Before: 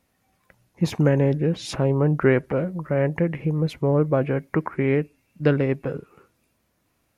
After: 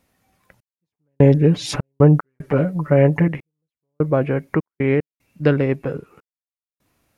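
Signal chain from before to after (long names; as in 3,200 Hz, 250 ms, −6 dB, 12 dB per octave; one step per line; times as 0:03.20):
0:00.94–0:03.28: comb filter 6.9 ms, depth 98%
gate pattern "xxx...xxx.x.xx" 75 BPM −60 dB
level +3 dB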